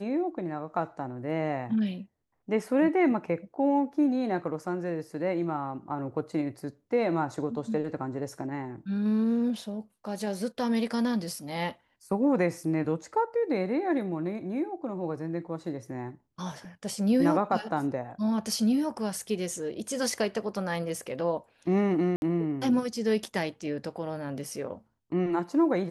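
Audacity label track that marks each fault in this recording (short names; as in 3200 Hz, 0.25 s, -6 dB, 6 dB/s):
22.160000	22.220000	gap 61 ms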